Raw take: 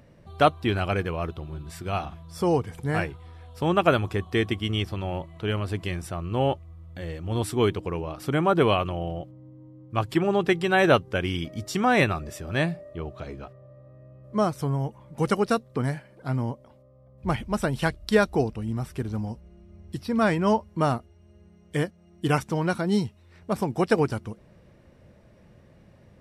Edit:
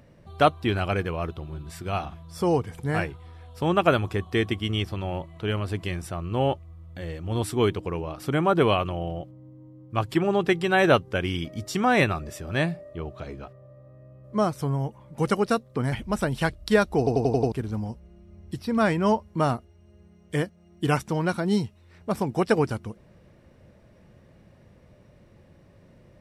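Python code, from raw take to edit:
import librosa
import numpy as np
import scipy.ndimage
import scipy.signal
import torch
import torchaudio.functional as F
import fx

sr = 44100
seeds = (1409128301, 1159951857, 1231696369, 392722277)

y = fx.edit(x, sr, fx.cut(start_s=15.92, length_s=1.41),
    fx.stutter_over(start_s=18.39, slice_s=0.09, count=6), tone=tone)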